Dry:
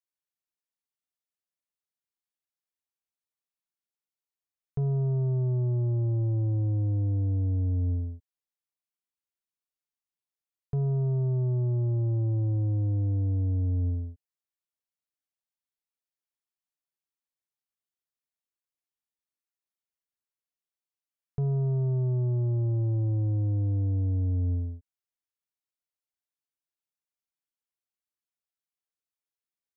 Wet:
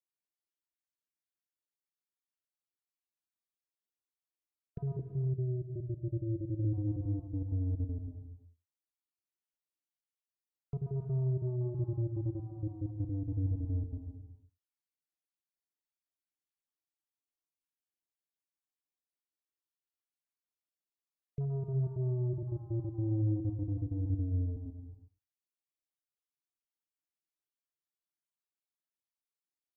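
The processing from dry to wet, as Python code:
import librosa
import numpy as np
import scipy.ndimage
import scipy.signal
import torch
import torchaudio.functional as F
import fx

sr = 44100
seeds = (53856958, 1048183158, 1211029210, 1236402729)

y = fx.spec_dropout(x, sr, seeds[0], share_pct=39)
y = fx.ellip_lowpass(y, sr, hz=570.0, order=4, stop_db=40, at=(4.99, 6.65))
y = fx.peak_eq(y, sr, hz=320.0, db=9.0, octaves=0.29)
y = y + 10.0 ** (-22.0 / 20.0) * np.pad(y, (int(85 * sr / 1000.0), 0))[:len(y)]
y = fx.rev_gated(y, sr, seeds[1], gate_ms=390, shape='flat', drr_db=6.5)
y = y * librosa.db_to_amplitude(-6.5)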